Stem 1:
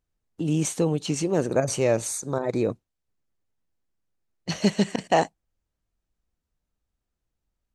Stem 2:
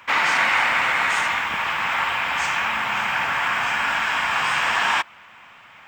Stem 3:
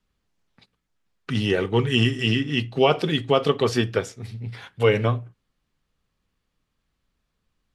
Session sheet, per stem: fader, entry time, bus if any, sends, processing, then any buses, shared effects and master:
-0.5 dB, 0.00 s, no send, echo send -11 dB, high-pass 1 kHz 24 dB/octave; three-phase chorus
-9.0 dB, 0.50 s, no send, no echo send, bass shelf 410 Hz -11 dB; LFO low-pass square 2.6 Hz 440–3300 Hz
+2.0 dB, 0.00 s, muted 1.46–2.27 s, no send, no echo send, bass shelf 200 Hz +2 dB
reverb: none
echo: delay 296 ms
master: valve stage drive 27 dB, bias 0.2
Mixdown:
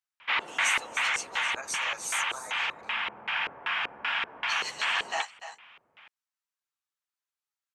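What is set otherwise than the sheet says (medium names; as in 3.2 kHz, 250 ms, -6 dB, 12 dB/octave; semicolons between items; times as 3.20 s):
stem 2: entry 0.50 s -> 0.20 s; stem 3: muted; master: missing valve stage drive 27 dB, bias 0.2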